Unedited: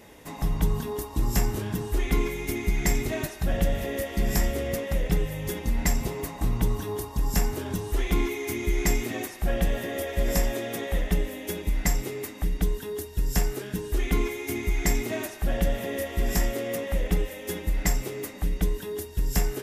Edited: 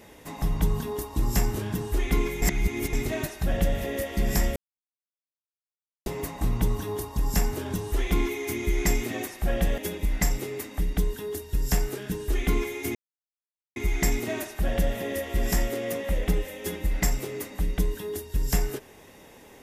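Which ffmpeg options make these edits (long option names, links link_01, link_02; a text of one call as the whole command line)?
ffmpeg -i in.wav -filter_complex "[0:a]asplit=7[link_01][link_02][link_03][link_04][link_05][link_06][link_07];[link_01]atrim=end=2.422[link_08];[link_02]atrim=start=2.418:end=2.932,asetpts=PTS-STARTPTS,areverse[link_09];[link_03]atrim=start=2.928:end=4.56,asetpts=PTS-STARTPTS,afade=type=out:start_time=1.628:duration=0.004:curve=hsin[link_10];[link_04]atrim=start=4.56:end=6.06,asetpts=PTS-STARTPTS,volume=0[link_11];[link_05]atrim=start=6.06:end=9.782,asetpts=PTS-STARTPTS,afade=type=in:duration=0.004:curve=hsin[link_12];[link_06]atrim=start=11.418:end=14.59,asetpts=PTS-STARTPTS,afade=type=out:start_time=3.168:duration=0.004:curve=hsin,apad=pad_dur=0.81[link_13];[link_07]atrim=start=14.59,asetpts=PTS-STARTPTS,afade=type=in:duration=0.004:curve=hsin[link_14];[link_08][link_09]acrossfade=duration=0.004:curve1=hsin:curve2=hsin[link_15];[link_10][link_11][link_12]concat=n=3:v=0:a=1[link_16];[link_15][link_16]acrossfade=duration=0.004:curve1=hsin:curve2=hsin[link_17];[link_13][link_14]concat=n=2:v=0:a=1[link_18];[link_17][link_18]acrossfade=duration=0.004:curve1=hsin:curve2=hsin" out.wav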